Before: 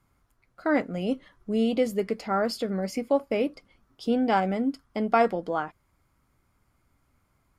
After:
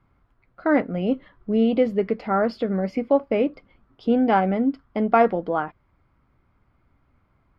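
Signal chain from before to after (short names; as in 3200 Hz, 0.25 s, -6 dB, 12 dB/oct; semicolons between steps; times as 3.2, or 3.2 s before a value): air absorption 330 m; gain +5.5 dB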